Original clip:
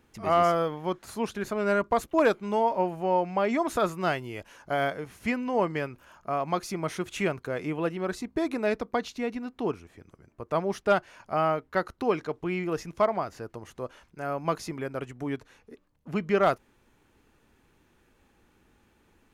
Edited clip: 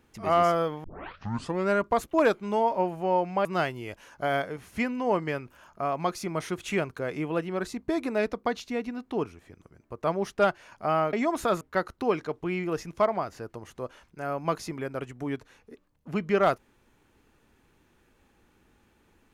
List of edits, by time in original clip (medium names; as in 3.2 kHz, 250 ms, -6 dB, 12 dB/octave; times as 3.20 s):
0.84 s: tape start 0.85 s
3.45–3.93 s: move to 11.61 s